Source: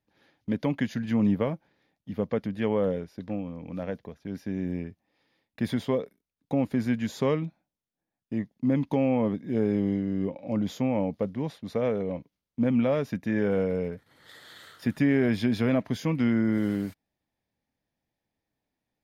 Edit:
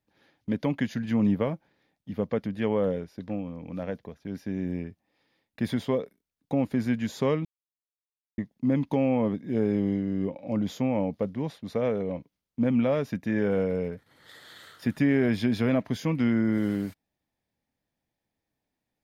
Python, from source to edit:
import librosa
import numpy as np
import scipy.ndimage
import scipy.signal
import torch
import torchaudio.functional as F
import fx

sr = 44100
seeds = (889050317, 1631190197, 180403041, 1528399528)

y = fx.edit(x, sr, fx.silence(start_s=7.45, length_s=0.93), tone=tone)